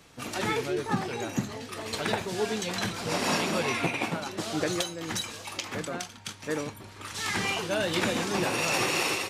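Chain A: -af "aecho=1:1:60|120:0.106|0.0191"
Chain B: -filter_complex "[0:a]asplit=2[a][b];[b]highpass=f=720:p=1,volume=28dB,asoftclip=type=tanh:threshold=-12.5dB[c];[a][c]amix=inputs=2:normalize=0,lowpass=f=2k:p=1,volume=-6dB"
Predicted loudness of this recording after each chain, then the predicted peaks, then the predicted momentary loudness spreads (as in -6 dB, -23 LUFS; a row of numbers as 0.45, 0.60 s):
-29.5, -22.0 LUFS; -12.5, -13.5 dBFS; 10, 4 LU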